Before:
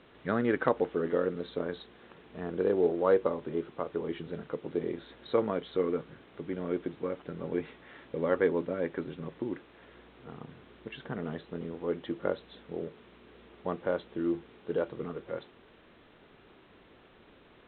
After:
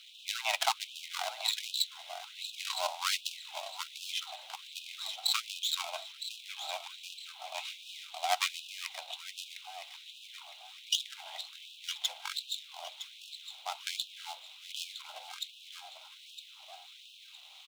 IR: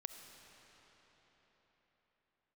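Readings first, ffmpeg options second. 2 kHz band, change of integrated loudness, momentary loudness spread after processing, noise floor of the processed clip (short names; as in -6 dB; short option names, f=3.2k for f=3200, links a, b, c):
+1.5 dB, -3.5 dB, 16 LU, -54 dBFS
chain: -af "aeval=exprs='if(lt(val(0),0),0.447*val(0),val(0))':c=same,bass=f=250:g=-8,treble=f=4k:g=5,aecho=1:1:961|1922|2883|3844|4805:0.398|0.159|0.0637|0.0255|0.0102,aexciter=amount=8.9:drive=7.6:freq=2.3k,aeval=exprs='0.282*(cos(1*acos(clip(val(0)/0.282,-1,1)))-cos(1*PI/2))+0.02*(cos(7*acos(clip(val(0)/0.282,-1,1)))-cos(7*PI/2))':c=same,lowshelf=f=450:t=q:w=3:g=-9.5,bandreject=f=1.6k:w=8.1,afreqshift=180,afftfilt=real='re*gte(b*sr/1024,490*pow(2500/490,0.5+0.5*sin(2*PI*1.3*pts/sr)))':imag='im*gte(b*sr/1024,490*pow(2500/490,0.5+0.5*sin(2*PI*1.3*pts/sr)))':win_size=1024:overlap=0.75"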